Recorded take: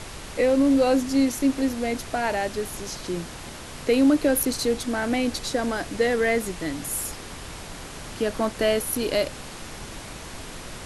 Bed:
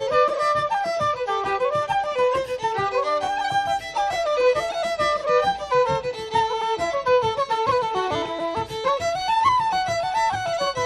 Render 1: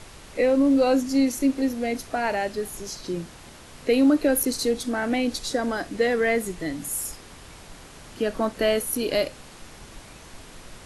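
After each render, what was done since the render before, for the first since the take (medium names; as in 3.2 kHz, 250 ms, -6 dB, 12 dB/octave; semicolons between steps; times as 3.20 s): noise print and reduce 7 dB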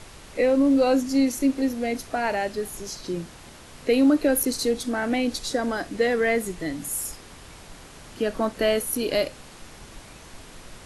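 no audible change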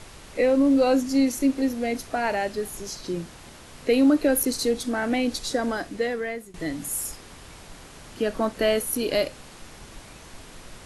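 5.70–6.54 s: fade out, to -19.5 dB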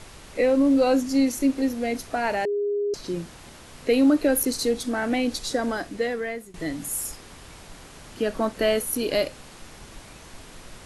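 2.45–2.94 s: bleep 409 Hz -22 dBFS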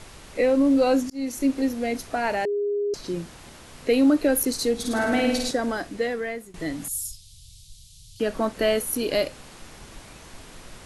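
1.10–1.59 s: fade in equal-power; 4.74–5.51 s: flutter echo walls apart 9.1 m, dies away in 0.98 s; 6.88–8.20 s: elliptic band-stop 120–3700 Hz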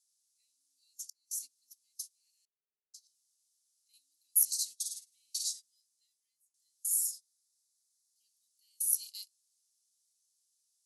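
inverse Chebyshev high-pass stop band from 1.6 kHz, stop band 60 dB; gate -42 dBFS, range -24 dB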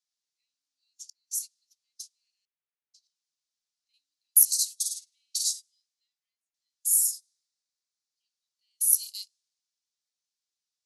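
level-controlled noise filter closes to 2.2 kHz, open at -33.5 dBFS; tilt shelf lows -8.5 dB, about 1.3 kHz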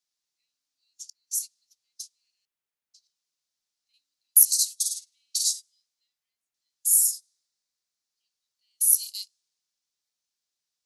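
trim +3 dB; peak limiter -3 dBFS, peak gain reduction 2 dB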